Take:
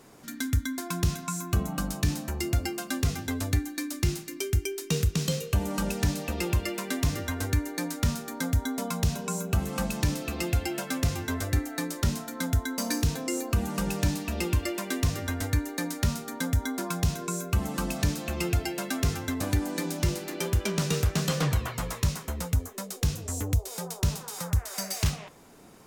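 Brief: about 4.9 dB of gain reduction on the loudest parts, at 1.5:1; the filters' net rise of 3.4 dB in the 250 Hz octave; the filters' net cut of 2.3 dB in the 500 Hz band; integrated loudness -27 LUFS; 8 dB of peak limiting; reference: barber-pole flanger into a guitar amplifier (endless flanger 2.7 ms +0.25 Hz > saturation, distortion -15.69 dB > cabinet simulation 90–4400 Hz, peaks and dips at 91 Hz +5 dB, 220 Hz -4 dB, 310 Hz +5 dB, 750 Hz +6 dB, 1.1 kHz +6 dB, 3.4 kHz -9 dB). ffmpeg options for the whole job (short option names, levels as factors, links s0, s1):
-filter_complex "[0:a]equalizer=f=250:t=o:g=6,equalizer=f=500:t=o:g=-9,acompressor=threshold=0.0224:ratio=1.5,alimiter=level_in=1.06:limit=0.0631:level=0:latency=1,volume=0.944,asplit=2[s0][s1];[s1]adelay=2.7,afreqshift=0.25[s2];[s0][s2]amix=inputs=2:normalize=1,asoftclip=threshold=0.0266,highpass=90,equalizer=f=91:t=q:w=4:g=5,equalizer=f=220:t=q:w=4:g=-4,equalizer=f=310:t=q:w=4:g=5,equalizer=f=750:t=q:w=4:g=6,equalizer=f=1100:t=q:w=4:g=6,equalizer=f=3400:t=q:w=4:g=-9,lowpass=f=4400:w=0.5412,lowpass=f=4400:w=1.3066,volume=4.73"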